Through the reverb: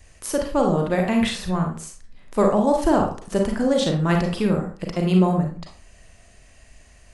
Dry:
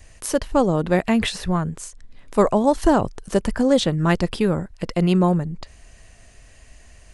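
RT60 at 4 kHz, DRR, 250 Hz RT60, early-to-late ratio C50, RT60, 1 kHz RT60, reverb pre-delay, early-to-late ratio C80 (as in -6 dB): 0.30 s, 1.5 dB, 0.40 s, 5.0 dB, 0.40 s, 0.40 s, 33 ms, 11.0 dB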